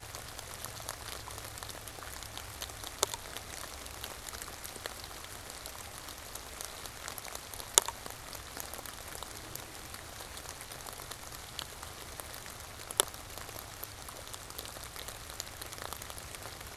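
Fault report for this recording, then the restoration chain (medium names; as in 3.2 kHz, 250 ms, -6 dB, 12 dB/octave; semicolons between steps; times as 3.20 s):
crackle 49 per s -47 dBFS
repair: de-click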